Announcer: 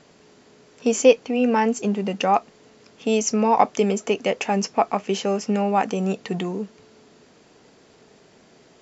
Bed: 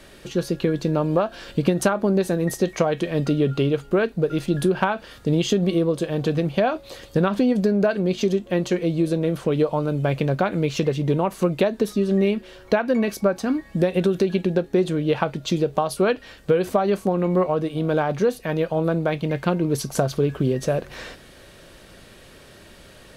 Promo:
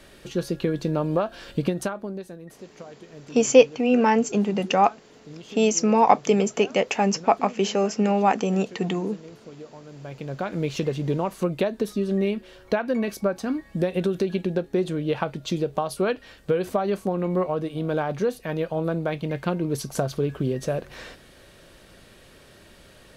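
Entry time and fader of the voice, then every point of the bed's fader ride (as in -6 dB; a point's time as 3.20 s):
2.50 s, +0.5 dB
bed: 1.59 s -3 dB
2.52 s -21.5 dB
9.84 s -21.5 dB
10.59 s -4 dB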